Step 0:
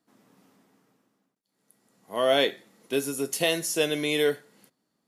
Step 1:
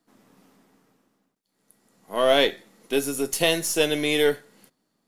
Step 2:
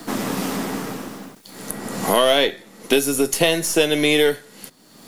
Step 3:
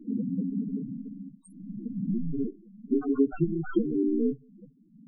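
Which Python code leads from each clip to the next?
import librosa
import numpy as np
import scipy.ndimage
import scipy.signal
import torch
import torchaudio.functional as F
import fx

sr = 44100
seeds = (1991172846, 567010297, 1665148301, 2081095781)

y1 = np.where(x < 0.0, 10.0 ** (-3.0 / 20.0) * x, x)
y1 = y1 * librosa.db_to_amplitude(4.5)
y2 = fx.band_squash(y1, sr, depth_pct=100)
y2 = y2 * librosa.db_to_amplitude(5.0)
y3 = fx.bit_reversed(y2, sr, seeds[0], block=64)
y3 = fx.env_lowpass_down(y3, sr, base_hz=2300.0, full_db=-14.5)
y3 = fx.spec_topn(y3, sr, count=4)
y3 = y3 * librosa.db_to_amplitude(1.5)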